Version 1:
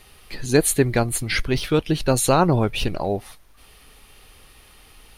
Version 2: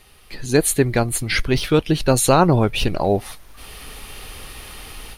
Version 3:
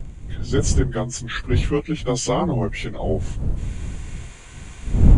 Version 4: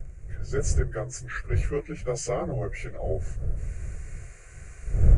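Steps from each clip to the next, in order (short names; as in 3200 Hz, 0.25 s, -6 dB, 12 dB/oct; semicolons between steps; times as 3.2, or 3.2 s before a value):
AGC gain up to 14 dB; gain -1 dB
inharmonic rescaling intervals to 90%; wind noise 83 Hz -17 dBFS; gain -4.5 dB
fixed phaser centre 920 Hz, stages 6; flange 1.3 Hz, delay 0.9 ms, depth 9 ms, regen -80%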